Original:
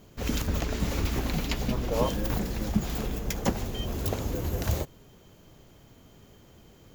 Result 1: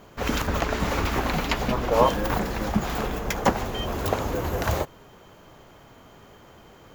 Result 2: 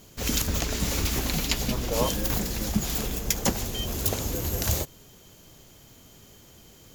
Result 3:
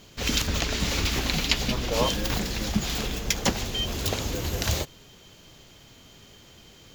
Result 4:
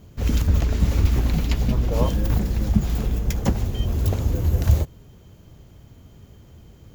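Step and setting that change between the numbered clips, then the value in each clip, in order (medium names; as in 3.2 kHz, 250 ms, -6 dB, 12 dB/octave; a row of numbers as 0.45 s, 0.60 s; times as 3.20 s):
peaking EQ, frequency: 1.1 kHz, 10 kHz, 4 kHz, 69 Hz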